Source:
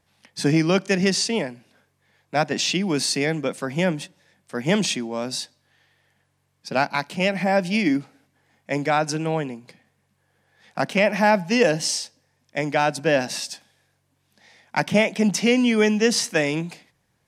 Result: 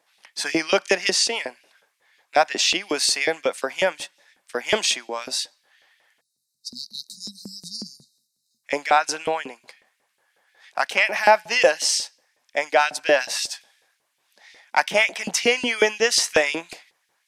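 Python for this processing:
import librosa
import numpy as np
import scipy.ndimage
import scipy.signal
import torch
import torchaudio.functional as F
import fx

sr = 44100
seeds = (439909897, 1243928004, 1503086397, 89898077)

y = fx.spec_erase(x, sr, start_s=6.21, length_s=2.43, low_hz=240.0, high_hz=3700.0)
y = fx.filter_lfo_highpass(y, sr, shape='saw_up', hz=5.5, low_hz=390.0, high_hz=3200.0, q=1.2)
y = F.gain(torch.from_numpy(y), 3.0).numpy()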